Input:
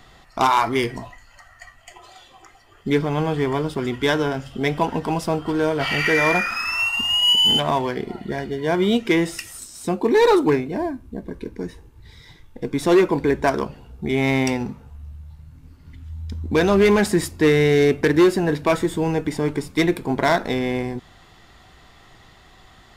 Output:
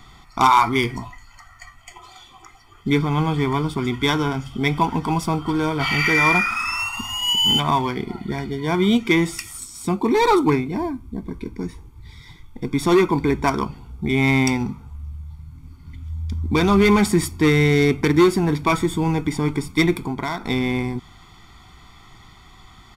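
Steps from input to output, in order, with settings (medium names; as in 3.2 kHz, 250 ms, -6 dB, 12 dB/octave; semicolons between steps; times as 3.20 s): comb 0.9 ms, depth 71%; 20.02–20.46 s: compression 5:1, threshold -23 dBFS, peak gain reduction 9 dB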